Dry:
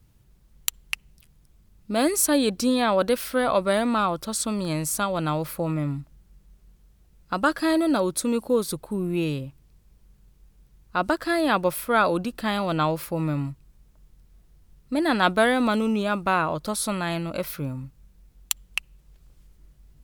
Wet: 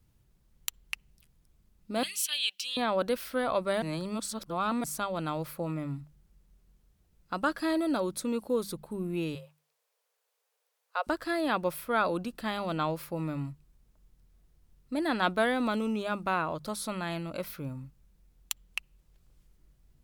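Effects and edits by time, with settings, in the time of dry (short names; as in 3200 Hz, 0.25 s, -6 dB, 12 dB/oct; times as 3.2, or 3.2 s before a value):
2.03–2.77 resonant high-pass 2900 Hz, resonance Q 6.5
3.82–4.84 reverse
9.35–11.07 steep high-pass 440 Hz 96 dB/oct
whole clip: notches 50/100/150/200 Hz; dynamic EQ 9100 Hz, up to -4 dB, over -41 dBFS, Q 1; gain -7 dB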